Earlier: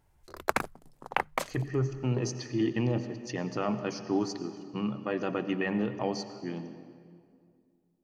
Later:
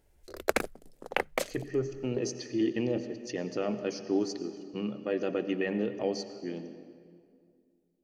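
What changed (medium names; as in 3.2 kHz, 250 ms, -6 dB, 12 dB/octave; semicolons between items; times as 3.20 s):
background +3.0 dB; master: add graphic EQ 125/500/1000 Hz -10/+6/-12 dB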